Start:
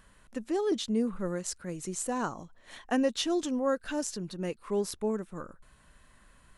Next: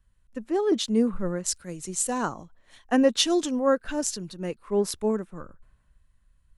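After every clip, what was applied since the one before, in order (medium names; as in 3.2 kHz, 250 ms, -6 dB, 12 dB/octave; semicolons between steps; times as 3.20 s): three bands expanded up and down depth 70%; trim +4.5 dB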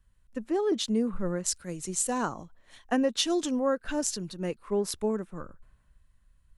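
compression 2.5:1, threshold -25 dBFS, peak gain reduction 7.5 dB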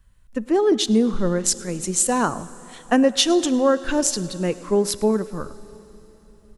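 echo from a far wall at 18 m, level -22 dB; reverberation RT60 3.8 s, pre-delay 13 ms, DRR 17 dB; trim +9 dB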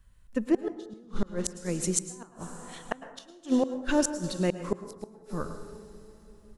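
inverted gate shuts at -11 dBFS, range -33 dB; plate-style reverb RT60 0.86 s, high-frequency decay 0.45×, pre-delay 95 ms, DRR 11 dB; trim -3 dB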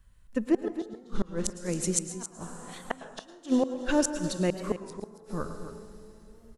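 delay 270 ms -12 dB; warped record 33 1/3 rpm, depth 100 cents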